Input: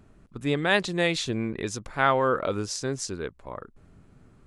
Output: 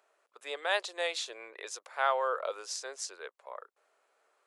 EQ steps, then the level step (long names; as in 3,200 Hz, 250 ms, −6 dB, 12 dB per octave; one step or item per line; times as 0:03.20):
Butterworth high-pass 500 Hz 36 dB per octave
dynamic equaliser 2,000 Hz, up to −4 dB, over −39 dBFS, Q 1.7
−5.0 dB